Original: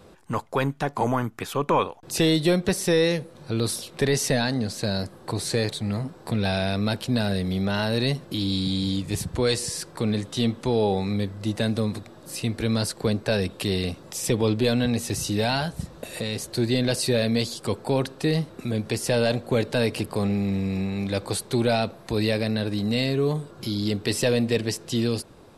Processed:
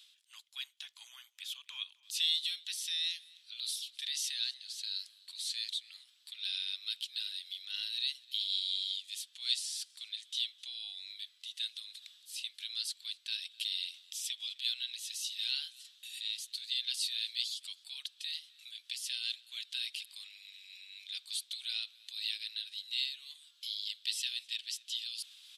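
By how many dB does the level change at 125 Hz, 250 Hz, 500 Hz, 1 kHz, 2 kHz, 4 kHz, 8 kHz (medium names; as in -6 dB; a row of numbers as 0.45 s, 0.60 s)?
under -40 dB, under -40 dB, under -40 dB, under -35 dB, -14.5 dB, -2.5 dB, -9.5 dB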